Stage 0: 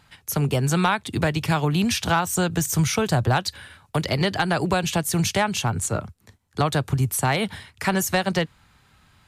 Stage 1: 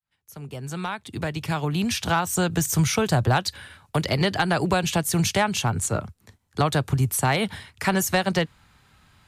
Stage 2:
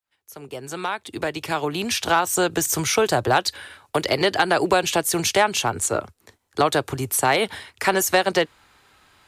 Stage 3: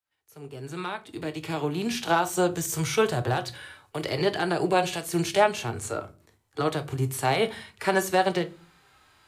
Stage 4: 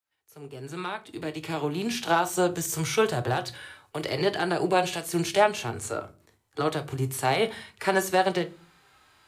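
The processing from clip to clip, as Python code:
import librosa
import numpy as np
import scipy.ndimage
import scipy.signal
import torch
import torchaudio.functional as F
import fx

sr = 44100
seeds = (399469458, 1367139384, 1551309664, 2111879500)

y1 = fx.fade_in_head(x, sr, length_s=2.57)
y2 = fx.low_shelf_res(y1, sr, hz=250.0, db=-10.0, q=1.5)
y2 = F.gain(torch.from_numpy(y2), 3.5).numpy()
y3 = fx.hpss(y2, sr, part='percussive', gain_db=-14)
y3 = fx.room_shoebox(y3, sr, seeds[0], volume_m3=190.0, walls='furnished', distance_m=0.51)
y4 = fx.low_shelf(y3, sr, hz=140.0, db=-3.5)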